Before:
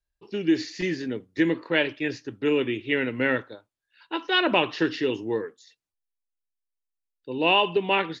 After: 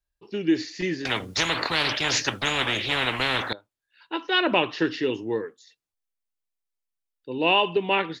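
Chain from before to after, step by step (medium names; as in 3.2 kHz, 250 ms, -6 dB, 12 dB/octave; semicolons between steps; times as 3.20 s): 1.05–3.53 s: spectrum-flattening compressor 10:1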